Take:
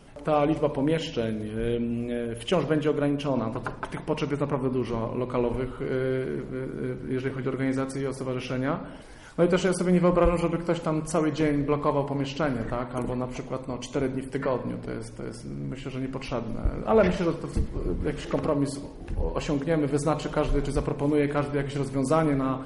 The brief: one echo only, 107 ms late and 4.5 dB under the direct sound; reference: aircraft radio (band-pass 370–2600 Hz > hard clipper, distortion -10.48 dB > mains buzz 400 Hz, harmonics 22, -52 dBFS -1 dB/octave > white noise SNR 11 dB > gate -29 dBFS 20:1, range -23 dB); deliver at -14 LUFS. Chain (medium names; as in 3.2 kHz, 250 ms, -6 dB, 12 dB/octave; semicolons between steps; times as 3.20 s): band-pass 370–2600 Hz; delay 107 ms -4.5 dB; hard clipper -22.5 dBFS; mains buzz 400 Hz, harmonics 22, -52 dBFS -1 dB/octave; white noise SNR 11 dB; gate -29 dBFS 20:1, range -23 dB; trim +16.5 dB